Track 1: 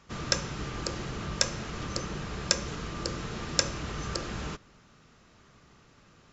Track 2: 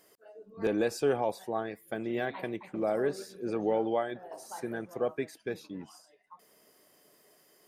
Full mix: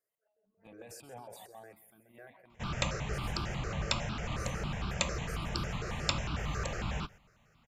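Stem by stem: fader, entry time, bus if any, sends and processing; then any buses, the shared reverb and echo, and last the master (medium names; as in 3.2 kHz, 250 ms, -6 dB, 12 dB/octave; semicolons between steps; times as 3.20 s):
+2.5 dB, 2.50 s, no send, no echo send, none
-18.0 dB, 0.00 s, no send, echo send -10.5 dB, decay stretcher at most 21 dB/s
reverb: none
echo: feedback delay 132 ms, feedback 42%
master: gate -48 dBFS, range -7 dB; stepped phaser 11 Hz 900–1900 Hz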